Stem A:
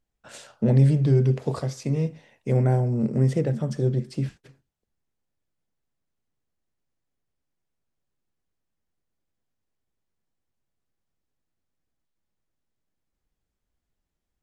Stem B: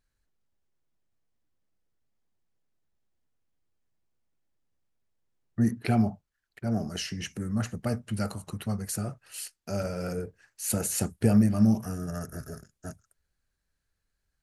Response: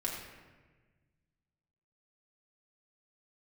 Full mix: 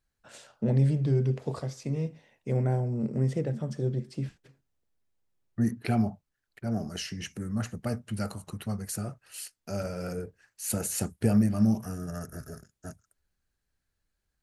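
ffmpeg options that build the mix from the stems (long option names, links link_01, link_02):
-filter_complex "[0:a]volume=-6dB[link_01];[1:a]volume=-2dB[link_02];[link_01][link_02]amix=inputs=2:normalize=0"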